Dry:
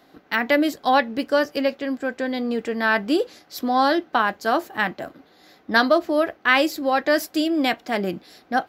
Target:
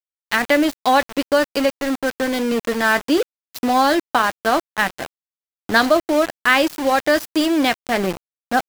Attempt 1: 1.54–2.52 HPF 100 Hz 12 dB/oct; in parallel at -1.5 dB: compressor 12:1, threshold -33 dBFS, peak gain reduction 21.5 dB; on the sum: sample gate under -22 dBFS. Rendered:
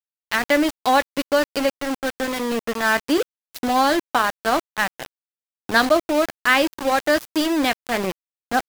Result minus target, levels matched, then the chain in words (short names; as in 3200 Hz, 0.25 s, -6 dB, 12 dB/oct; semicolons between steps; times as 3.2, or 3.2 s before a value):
compressor: peak gain reduction +11 dB
1.54–2.52 HPF 100 Hz 12 dB/oct; in parallel at -1.5 dB: compressor 12:1, threshold -21 dBFS, peak gain reduction 10.5 dB; on the sum: sample gate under -22 dBFS